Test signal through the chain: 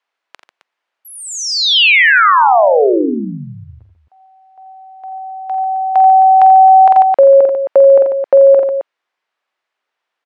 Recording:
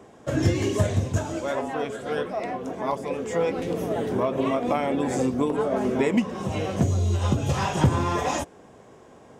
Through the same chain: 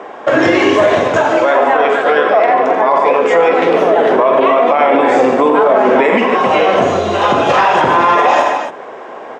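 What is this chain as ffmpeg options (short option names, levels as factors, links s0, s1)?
-filter_complex "[0:a]highpass=580,lowpass=2300,asplit=2[s0][s1];[s1]aecho=0:1:47|84|87|144|265:0.316|0.188|0.251|0.251|0.211[s2];[s0][s2]amix=inputs=2:normalize=0,alimiter=level_in=17.8:limit=0.891:release=50:level=0:latency=1,volume=0.891"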